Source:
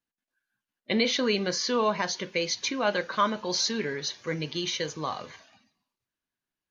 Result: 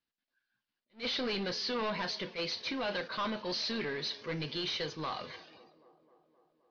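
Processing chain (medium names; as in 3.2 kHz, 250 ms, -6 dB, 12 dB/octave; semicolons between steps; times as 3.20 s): treble shelf 3.8 kHz +10 dB; saturation -29 dBFS, distortion -6 dB; steep low-pass 5 kHz 48 dB/octave; feedback echo behind a band-pass 261 ms, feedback 68%, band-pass 460 Hz, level -18.5 dB; attacks held to a fixed rise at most 290 dB/s; trim -2 dB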